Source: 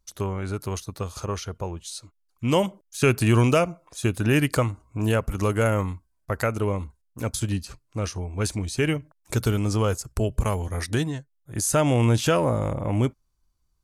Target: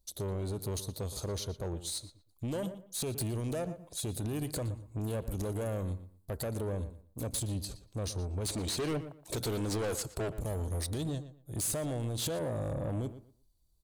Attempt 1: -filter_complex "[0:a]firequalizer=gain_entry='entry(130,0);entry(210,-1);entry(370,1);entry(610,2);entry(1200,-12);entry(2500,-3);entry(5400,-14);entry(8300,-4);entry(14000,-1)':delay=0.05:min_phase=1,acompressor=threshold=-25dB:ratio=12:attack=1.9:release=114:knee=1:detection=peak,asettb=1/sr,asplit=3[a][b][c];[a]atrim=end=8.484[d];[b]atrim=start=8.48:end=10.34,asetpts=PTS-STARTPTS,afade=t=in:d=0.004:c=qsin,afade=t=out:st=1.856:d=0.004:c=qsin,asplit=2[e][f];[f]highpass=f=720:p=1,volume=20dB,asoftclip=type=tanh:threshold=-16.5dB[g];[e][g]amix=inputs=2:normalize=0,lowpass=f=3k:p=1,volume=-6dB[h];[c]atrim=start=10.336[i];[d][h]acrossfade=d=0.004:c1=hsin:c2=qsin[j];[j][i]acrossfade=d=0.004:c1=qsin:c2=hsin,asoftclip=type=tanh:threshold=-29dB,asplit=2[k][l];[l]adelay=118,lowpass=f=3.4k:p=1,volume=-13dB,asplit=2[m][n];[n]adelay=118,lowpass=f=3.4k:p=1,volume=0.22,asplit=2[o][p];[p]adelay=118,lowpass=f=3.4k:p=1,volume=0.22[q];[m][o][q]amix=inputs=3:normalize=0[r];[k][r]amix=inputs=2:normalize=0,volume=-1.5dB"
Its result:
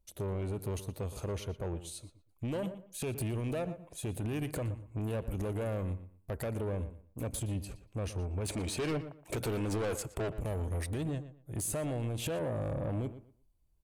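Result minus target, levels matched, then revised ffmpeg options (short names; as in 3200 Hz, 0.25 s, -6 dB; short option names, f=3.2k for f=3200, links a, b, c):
4000 Hz band -5.5 dB
-filter_complex "[0:a]firequalizer=gain_entry='entry(130,0);entry(210,-1);entry(370,1);entry(610,2);entry(1200,-12);entry(2500,-3);entry(5400,-14);entry(8300,-4);entry(14000,-1)':delay=0.05:min_phase=1,acompressor=threshold=-25dB:ratio=12:attack=1.9:release=114:knee=1:detection=peak,highshelf=f=3.2k:t=q:w=3:g=7.5,asettb=1/sr,asplit=3[a][b][c];[a]atrim=end=8.484[d];[b]atrim=start=8.48:end=10.34,asetpts=PTS-STARTPTS,afade=t=in:d=0.004:c=qsin,afade=t=out:st=1.856:d=0.004:c=qsin,asplit=2[e][f];[f]highpass=f=720:p=1,volume=20dB,asoftclip=type=tanh:threshold=-16.5dB[g];[e][g]amix=inputs=2:normalize=0,lowpass=f=3k:p=1,volume=-6dB[h];[c]atrim=start=10.336[i];[d][h]acrossfade=d=0.004:c1=hsin:c2=qsin[j];[j][i]acrossfade=d=0.004:c1=qsin:c2=hsin,asoftclip=type=tanh:threshold=-29dB,asplit=2[k][l];[l]adelay=118,lowpass=f=3.4k:p=1,volume=-13dB,asplit=2[m][n];[n]adelay=118,lowpass=f=3.4k:p=1,volume=0.22,asplit=2[o][p];[p]adelay=118,lowpass=f=3.4k:p=1,volume=0.22[q];[m][o][q]amix=inputs=3:normalize=0[r];[k][r]amix=inputs=2:normalize=0,volume=-1.5dB"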